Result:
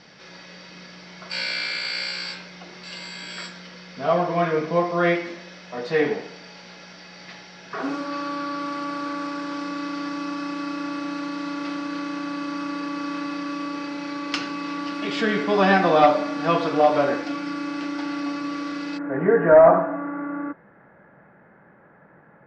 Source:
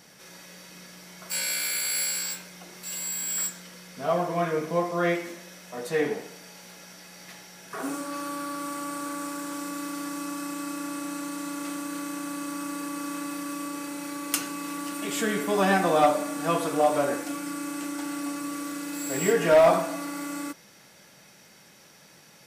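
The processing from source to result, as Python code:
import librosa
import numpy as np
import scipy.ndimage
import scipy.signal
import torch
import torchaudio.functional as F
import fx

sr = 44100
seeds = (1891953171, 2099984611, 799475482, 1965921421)

y = fx.cheby1_lowpass(x, sr, hz=fx.steps((0.0, 5000.0), (18.97, 1700.0)), order=4)
y = y * 10.0 ** (5.5 / 20.0)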